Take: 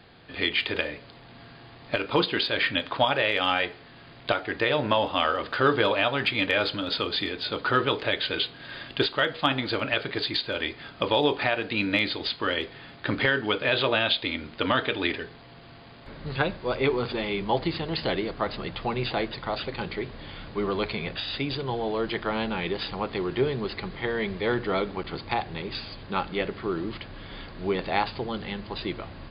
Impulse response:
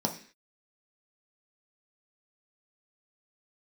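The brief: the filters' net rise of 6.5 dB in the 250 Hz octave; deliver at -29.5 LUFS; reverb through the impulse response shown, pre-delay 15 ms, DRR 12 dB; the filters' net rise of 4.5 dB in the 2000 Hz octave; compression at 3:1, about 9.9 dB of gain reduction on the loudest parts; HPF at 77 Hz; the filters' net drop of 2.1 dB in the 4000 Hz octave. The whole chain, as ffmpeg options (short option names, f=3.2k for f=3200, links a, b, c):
-filter_complex "[0:a]highpass=77,equalizer=f=250:t=o:g=8.5,equalizer=f=2k:t=o:g=7,equalizer=f=4k:t=o:g=-5.5,acompressor=threshold=-27dB:ratio=3,asplit=2[a][b];[1:a]atrim=start_sample=2205,adelay=15[c];[b][c]afir=irnorm=-1:irlink=0,volume=-19dB[d];[a][d]amix=inputs=2:normalize=0"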